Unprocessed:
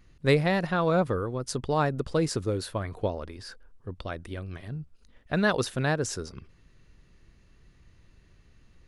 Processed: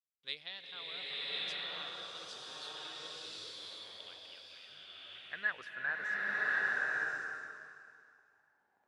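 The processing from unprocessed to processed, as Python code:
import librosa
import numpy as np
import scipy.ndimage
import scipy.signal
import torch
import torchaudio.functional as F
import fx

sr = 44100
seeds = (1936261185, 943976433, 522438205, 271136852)

y = np.where(np.abs(x) >= 10.0 ** (-47.5 / 20.0), x, 0.0)
y = fx.filter_sweep_bandpass(y, sr, from_hz=3400.0, to_hz=810.0, start_s=3.96, end_s=7.49, q=7.6)
y = fx.rev_bloom(y, sr, seeds[0], attack_ms=1090, drr_db=-7.5)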